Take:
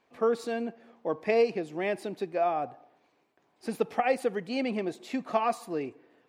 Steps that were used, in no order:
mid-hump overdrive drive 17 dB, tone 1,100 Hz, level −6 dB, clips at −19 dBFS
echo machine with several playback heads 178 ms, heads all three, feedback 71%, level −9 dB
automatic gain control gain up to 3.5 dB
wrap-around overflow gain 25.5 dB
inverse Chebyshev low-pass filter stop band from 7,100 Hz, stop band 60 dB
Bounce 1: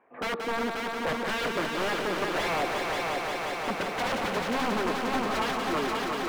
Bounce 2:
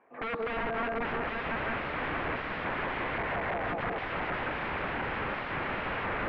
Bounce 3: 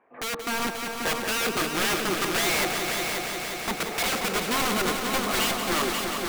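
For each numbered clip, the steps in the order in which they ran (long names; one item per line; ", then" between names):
inverse Chebyshev low-pass filter, then wrap-around overflow, then automatic gain control, then echo machine with several playback heads, then mid-hump overdrive
mid-hump overdrive, then automatic gain control, then echo machine with several playback heads, then wrap-around overflow, then inverse Chebyshev low-pass filter
inverse Chebyshev low-pass filter, then mid-hump overdrive, then wrap-around overflow, then automatic gain control, then echo machine with several playback heads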